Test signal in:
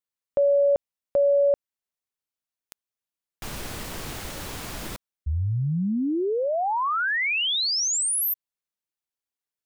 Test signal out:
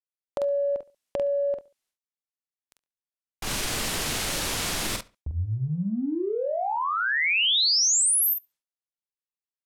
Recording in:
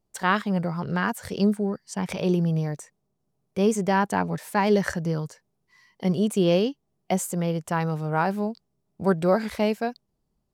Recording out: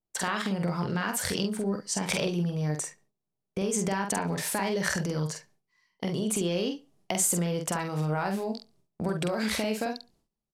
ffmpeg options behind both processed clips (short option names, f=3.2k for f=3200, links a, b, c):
-filter_complex "[0:a]lowpass=12k,agate=range=-19dB:threshold=-47dB:ratio=16:release=458:detection=peak,equalizer=f=71:t=o:w=2.1:g=-4,asplit=2[a][b];[b]alimiter=limit=-16.5dB:level=0:latency=1:release=198,volume=-1dB[c];[a][c]amix=inputs=2:normalize=0,acompressor=threshold=-27dB:ratio=16:attack=5.4:release=77:knee=6:detection=peak,asoftclip=type=hard:threshold=-16.5dB,asplit=2[d][e];[e]adelay=46,volume=-5dB[f];[d][f]amix=inputs=2:normalize=0,asplit=2[g][h];[h]adelay=70,lowpass=f=4.2k:p=1,volume=-20.5dB,asplit=2[i][j];[j]adelay=70,lowpass=f=4.2k:p=1,volume=0.29[k];[g][i][k]amix=inputs=3:normalize=0,adynamicequalizer=threshold=0.00794:dfrequency=1900:dqfactor=0.7:tfrequency=1900:tqfactor=0.7:attack=5:release=100:ratio=0.375:range=3:mode=boostabove:tftype=highshelf"